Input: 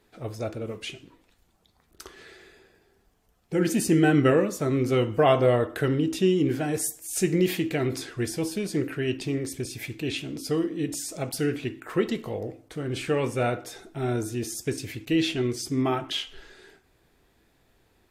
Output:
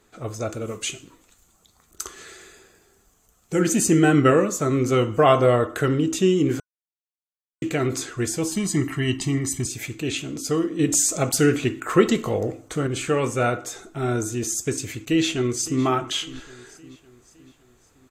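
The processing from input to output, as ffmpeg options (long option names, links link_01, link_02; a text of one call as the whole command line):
ffmpeg -i in.wav -filter_complex "[0:a]asettb=1/sr,asplit=3[link_01][link_02][link_03];[link_01]atrim=end=0.494[link_04];[link_02]atrim=start=0.49:end=3.62,asetpts=PTS-STARTPTS,afade=type=in:duration=0.004:curve=qsin,afade=type=out:start_time=3.126:duration=0.004:curve=qsin,highshelf=frequency=5100:gain=9[link_05];[link_03]atrim=start=3.616[link_06];[link_04][link_05]acrossfade=duration=0.004:curve1=hsin:curve2=qsin[link_07];[link_07][link_06]acrossfade=duration=0.004:curve1=qsin:curve2=hsin,asettb=1/sr,asplit=3[link_08][link_09][link_10];[link_08]atrim=end=8.524[link_11];[link_09]atrim=start=8.52:end=9.67,asetpts=PTS-STARTPTS,afade=type=in:duration=0.004:curve=qsin,afade=type=out:start_time=1.146:duration=0.004:curve=qsin,aecho=1:1:1:0.9,atrim=end_sample=50715[link_12];[link_10]atrim=start=9.666[link_13];[link_11][link_12]acrossfade=duration=0.004:curve1=hsin:curve2=qsin[link_14];[link_14][link_13]acrossfade=duration=0.004:curve1=qsin:curve2=hsin,asettb=1/sr,asplit=3[link_15][link_16][link_17];[link_15]atrim=end=10.794[link_18];[link_16]atrim=start=10.79:end=12.87,asetpts=PTS-STARTPTS,afade=type=in:duration=0.004:curve=qsin,afade=type=out:start_time=2.076:duration=0.004:curve=qsin,acontrast=28[link_19];[link_17]atrim=start=12.866[link_20];[link_18][link_19]acrossfade=duration=0.004:curve1=hsin:curve2=qsin[link_21];[link_21][link_20]acrossfade=duration=0.004:curve1=qsin:curve2=hsin,asplit=2[link_22][link_23];[link_23]afade=type=in:start_time=15.01:duration=0.01,afade=type=out:start_time=15.83:duration=0.01,aecho=0:1:560|1120|1680|2240:0.133352|0.0666761|0.033338|0.016669[link_24];[link_22][link_24]amix=inputs=2:normalize=0,asplit=3[link_25][link_26][link_27];[link_25]atrim=end=6.6,asetpts=PTS-STARTPTS,afade=type=out:start_time=6.596:duration=0.004:curve=hsin[link_28];[link_26]atrim=start=6.6:end=7.62,asetpts=PTS-STARTPTS,volume=0[link_29];[link_27]atrim=start=7.62,asetpts=PTS-STARTPTS,afade=type=in:duration=0.004:curve=hsin[link_30];[link_28][link_29][link_30]concat=n=3:v=0:a=1,superequalizer=10b=1.78:15b=2.82,volume=3dB" out.wav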